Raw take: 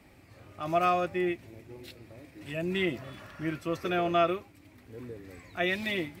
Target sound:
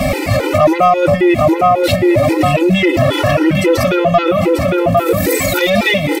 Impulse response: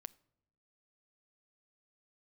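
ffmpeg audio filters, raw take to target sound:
-filter_complex "[0:a]asettb=1/sr,asplit=3[s0][s1][s2];[s0]atrim=end=4.974[s3];[s1]atrim=start=4.97:end=5.7,asetpts=PTS-STARTPTS,afade=t=in:d=0.004:c=qsin,afade=t=out:st=0.726:d=0.004:c=qsin,aemphasis=mode=production:type=75fm[s4];[s2]atrim=start=5.696[s5];[s3][s4]acrossfade=d=0.004:c1=hsin:c2=qsin[s6];[s6][s5]acrossfade=d=0.004:c1=qsin:c2=hsin,asplit=2[s7][s8];[s8]adelay=805,lowpass=f=2000:p=1,volume=0.299,asplit=2[s9][s10];[s10]adelay=805,lowpass=f=2000:p=1,volume=0.34,asplit=2[s11][s12];[s12]adelay=805,lowpass=f=2000:p=1,volume=0.34,asplit=2[s13][s14];[s14]adelay=805,lowpass=f=2000:p=1,volume=0.34[s15];[s7][s9][s11][s13][s15]amix=inputs=5:normalize=0,asplit=2[s16][s17];[1:a]atrim=start_sample=2205[s18];[s17][s18]afir=irnorm=-1:irlink=0,volume=10.6[s19];[s16][s19]amix=inputs=2:normalize=0,acompressor=threshold=0.0891:ratio=5,equalizer=f=590:t=o:w=0.36:g=10,aeval=exprs='0.376*sin(PI/2*1.41*val(0)/0.376)':c=same,bandreject=f=1600:w=13,alimiter=level_in=13.3:limit=0.891:release=50:level=0:latency=1,afftfilt=real='re*gt(sin(2*PI*3.7*pts/sr)*(1-2*mod(floor(b*sr/1024/260),2)),0)':imag='im*gt(sin(2*PI*3.7*pts/sr)*(1-2*mod(floor(b*sr/1024/260),2)),0)':win_size=1024:overlap=0.75,volume=0.841"

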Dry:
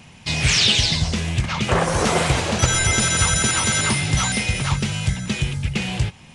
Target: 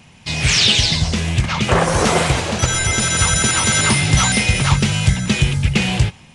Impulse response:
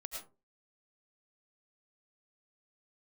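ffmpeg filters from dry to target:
-af "dynaudnorm=f=110:g=7:m=3.76,volume=0.891"

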